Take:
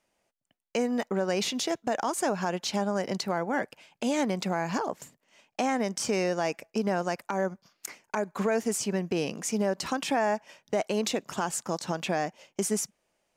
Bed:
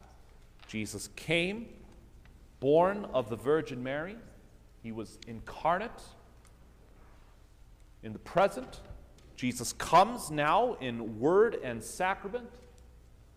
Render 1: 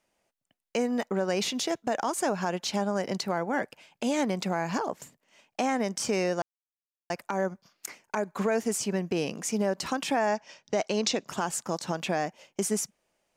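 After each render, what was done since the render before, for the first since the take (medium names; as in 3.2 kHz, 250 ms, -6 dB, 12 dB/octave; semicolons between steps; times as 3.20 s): 6.42–7.10 s: mute; 10.27–11.28 s: resonant low-pass 5.7 kHz, resonance Q 2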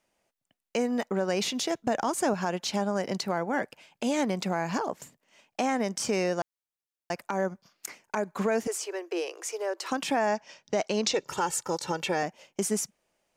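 1.79–2.34 s: bass shelf 180 Hz +10 dB; 8.67–9.91 s: rippled Chebyshev high-pass 330 Hz, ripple 3 dB; 11.13–12.23 s: comb 2.2 ms, depth 75%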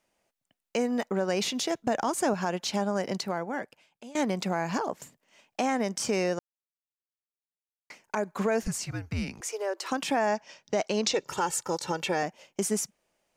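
3.08–4.15 s: fade out, to -22 dB; 6.39–7.90 s: mute; 8.62–9.41 s: frequency shift -260 Hz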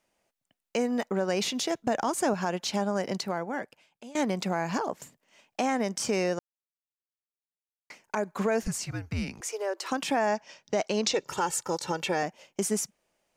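no audible change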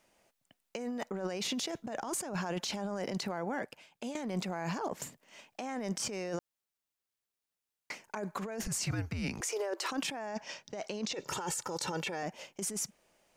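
compressor with a negative ratio -35 dBFS, ratio -1; peak limiter -25.5 dBFS, peak gain reduction 10 dB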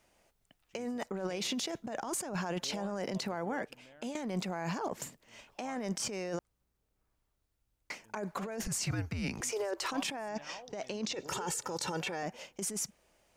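add bed -23.5 dB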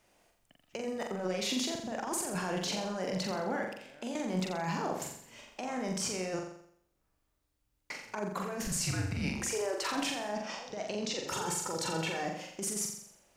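flutter echo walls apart 7.4 m, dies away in 0.66 s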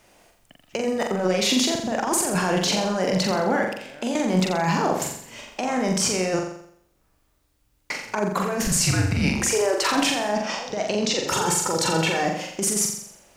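trim +12 dB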